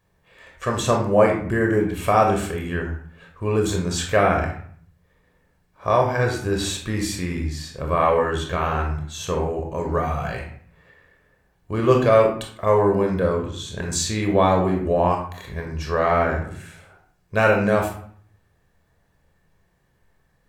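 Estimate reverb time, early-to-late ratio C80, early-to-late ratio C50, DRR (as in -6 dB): 0.55 s, 9.5 dB, 5.5 dB, 1.0 dB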